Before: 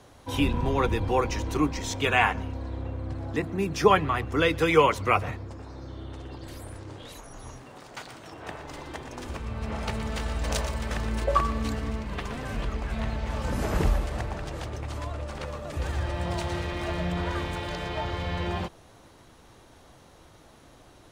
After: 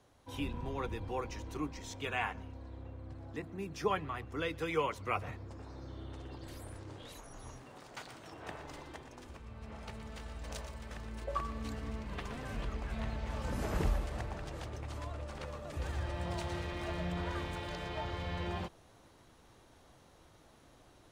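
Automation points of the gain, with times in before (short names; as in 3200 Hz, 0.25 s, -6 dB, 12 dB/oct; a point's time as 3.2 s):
4.99 s -13.5 dB
5.61 s -6.5 dB
8.64 s -6.5 dB
9.35 s -15 dB
11.13 s -15 dB
12.11 s -8 dB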